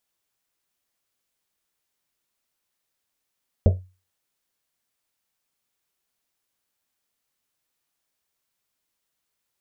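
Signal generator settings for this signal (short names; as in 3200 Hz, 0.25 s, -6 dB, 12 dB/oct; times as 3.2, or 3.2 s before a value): Risset drum, pitch 92 Hz, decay 0.32 s, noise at 520 Hz, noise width 280 Hz, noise 20%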